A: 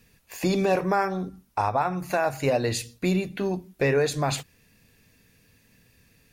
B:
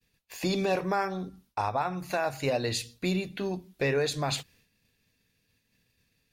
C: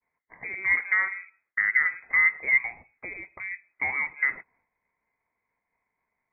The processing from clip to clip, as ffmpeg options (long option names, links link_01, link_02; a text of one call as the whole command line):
ffmpeg -i in.wav -af "equalizer=frequency=3800:width=1.3:gain=6.5,agate=range=-33dB:threshold=-51dB:ratio=3:detection=peak,volume=-5dB" out.wav
ffmpeg -i in.wav -af "highpass=frequency=640:width_type=q:width=4.9,lowpass=frequency=2300:width_type=q:width=0.5098,lowpass=frequency=2300:width_type=q:width=0.6013,lowpass=frequency=2300:width_type=q:width=0.9,lowpass=frequency=2300:width_type=q:width=2.563,afreqshift=-2700,volume=-3dB" out.wav